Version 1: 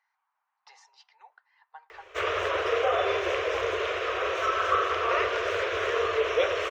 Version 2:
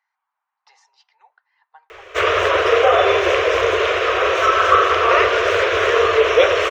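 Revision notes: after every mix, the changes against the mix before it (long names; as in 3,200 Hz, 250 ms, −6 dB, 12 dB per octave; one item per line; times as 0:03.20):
background +11.5 dB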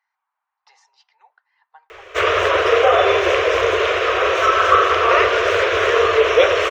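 nothing changed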